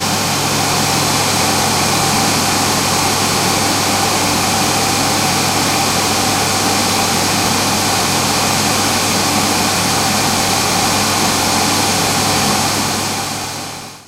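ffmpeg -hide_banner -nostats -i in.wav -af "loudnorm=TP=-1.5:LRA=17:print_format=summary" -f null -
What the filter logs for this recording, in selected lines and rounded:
Input Integrated:    -13.3 LUFS
Input True Peak:      -1.3 dBTP
Input LRA:             1.7 LU
Input Threshold:     -23.4 LUFS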